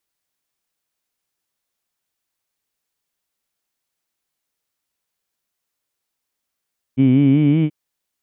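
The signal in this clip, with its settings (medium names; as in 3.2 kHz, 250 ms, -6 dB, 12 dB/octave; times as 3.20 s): formant-synthesis vowel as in heed, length 0.73 s, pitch 127 Hz, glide +4 st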